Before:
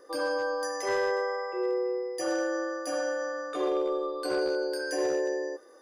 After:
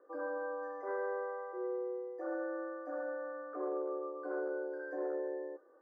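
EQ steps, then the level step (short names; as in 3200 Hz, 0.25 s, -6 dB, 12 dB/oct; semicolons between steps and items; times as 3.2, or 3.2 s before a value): elliptic band-pass 270–1500 Hz, stop band 40 dB; -8.5 dB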